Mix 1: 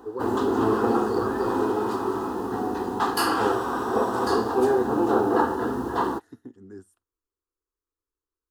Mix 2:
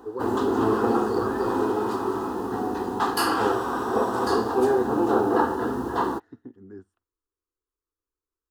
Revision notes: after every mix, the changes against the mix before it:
second voice: add Bessel low-pass filter 2,400 Hz, order 2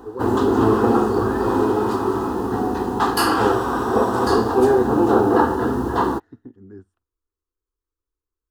background +4.5 dB
master: add low-shelf EQ 130 Hz +10 dB

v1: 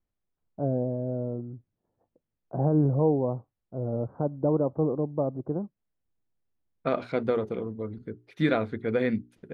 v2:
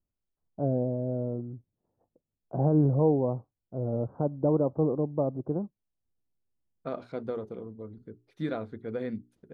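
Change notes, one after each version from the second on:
second voice −7.5 dB
master: add parametric band 2,300 Hz −8 dB 1.1 octaves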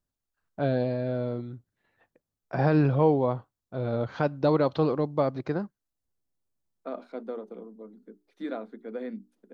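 first voice: remove Bessel low-pass filter 570 Hz, order 8
second voice: add Chebyshev high-pass with heavy ripple 190 Hz, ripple 3 dB

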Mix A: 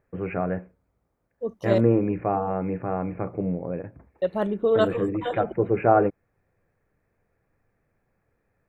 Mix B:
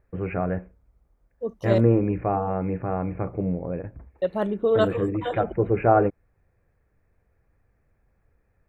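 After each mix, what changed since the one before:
first voice: remove high-pass filter 120 Hz 12 dB per octave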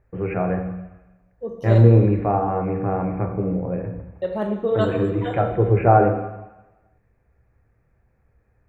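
second voice −3.0 dB
reverb: on, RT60 1.1 s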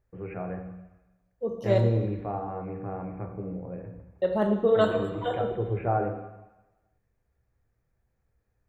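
first voice −12.0 dB

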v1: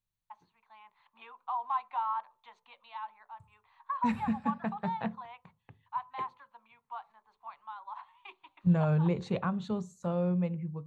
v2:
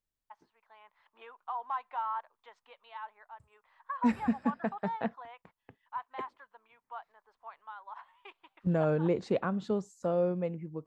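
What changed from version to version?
reverb: off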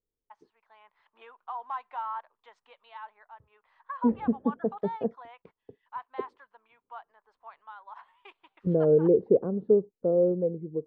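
second voice: add low-pass with resonance 440 Hz, resonance Q 4.4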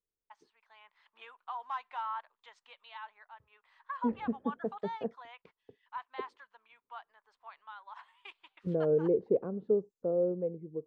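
master: add tilt shelving filter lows −8 dB, about 1,500 Hz

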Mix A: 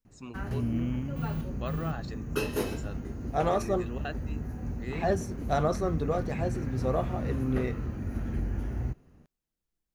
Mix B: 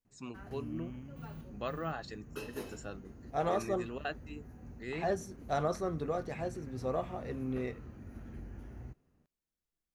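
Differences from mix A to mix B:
second voice −4.5 dB
background −12.0 dB
master: add low-shelf EQ 160 Hz −4 dB

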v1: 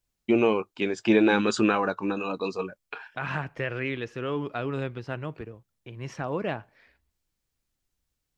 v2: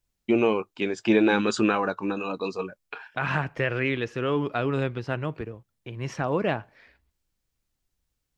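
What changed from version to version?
second voice +4.5 dB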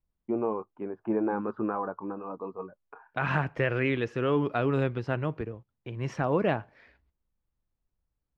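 first voice: add transistor ladder low-pass 1,300 Hz, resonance 40%
master: add high-shelf EQ 2,700 Hz −8 dB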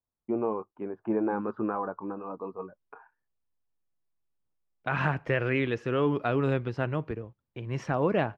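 second voice: entry +1.70 s

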